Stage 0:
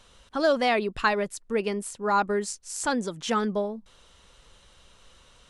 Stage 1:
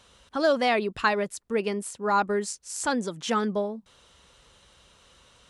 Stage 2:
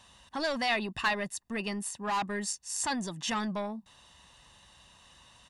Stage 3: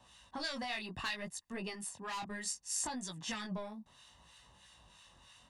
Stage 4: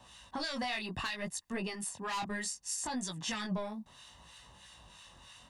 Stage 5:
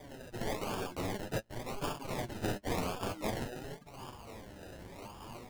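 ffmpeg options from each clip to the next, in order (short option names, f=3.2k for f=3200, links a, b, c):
-af "highpass=53"
-filter_complex "[0:a]lowshelf=f=80:g=-7.5,aecho=1:1:1.1:0.66,acrossover=split=1700[a][b];[a]asoftclip=type=tanh:threshold=-28.5dB[c];[c][b]amix=inputs=2:normalize=0,volume=-1.5dB"
-filter_complex "[0:a]acrossover=split=1200[a][b];[a]aeval=exprs='val(0)*(1-0.7/2+0.7/2*cos(2*PI*3.1*n/s))':c=same[c];[b]aeval=exprs='val(0)*(1-0.7/2-0.7/2*cos(2*PI*3.1*n/s))':c=same[d];[c][d]amix=inputs=2:normalize=0,flanger=delay=16:depth=7.5:speed=0.66,acrossover=split=140|3000[e][f][g];[f]acompressor=threshold=-42dB:ratio=6[h];[e][h][g]amix=inputs=3:normalize=0,volume=2.5dB"
-af "alimiter=level_in=8dB:limit=-24dB:level=0:latency=1:release=160,volume=-8dB,volume=5.5dB"
-af "afftfilt=real='re*lt(hypot(re,im),0.0282)':imag='im*lt(hypot(re,im),0.0282)':win_size=1024:overlap=0.75,acrusher=samples=31:mix=1:aa=0.000001:lfo=1:lforange=18.6:lforate=0.91,flanger=delay=6.7:depth=4.6:regen=36:speed=0.52:shape=triangular,volume=12dB"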